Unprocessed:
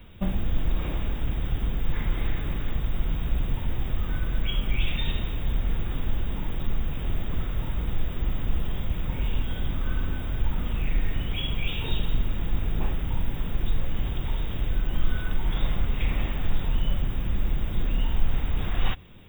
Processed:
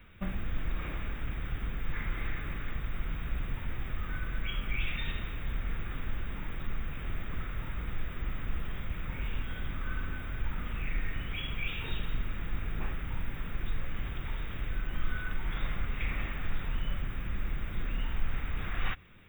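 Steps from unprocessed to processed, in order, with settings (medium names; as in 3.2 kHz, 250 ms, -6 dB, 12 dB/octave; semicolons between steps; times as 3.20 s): high-order bell 1.7 kHz +9 dB 1.3 oct; trim -8.5 dB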